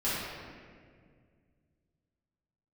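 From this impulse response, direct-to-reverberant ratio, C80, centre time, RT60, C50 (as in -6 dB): -12.0 dB, -0.5 dB, 0.127 s, 2.0 s, -3.0 dB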